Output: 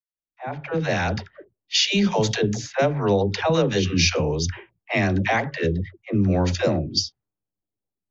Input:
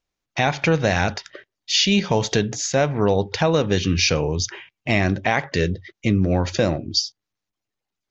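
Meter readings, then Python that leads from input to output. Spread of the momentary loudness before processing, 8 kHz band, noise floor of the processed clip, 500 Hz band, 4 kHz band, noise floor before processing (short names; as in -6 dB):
7 LU, n/a, under -85 dBFS, -1.5 dB, -2.0 dB, -85 dBFS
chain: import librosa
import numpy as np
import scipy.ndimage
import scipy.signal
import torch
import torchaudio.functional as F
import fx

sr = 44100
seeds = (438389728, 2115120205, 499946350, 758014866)

y = fx.fade_in_head(x, sr, length_s=1.21)
y = fx.dispersion(y, sr, late='lows', ms=98.0, hz=410.0)
y = fx.env_lowpass(y, sr, base_hz=500.0, full_db=-15.5)
y = y * librosa.db_to_amplitude(-1.0)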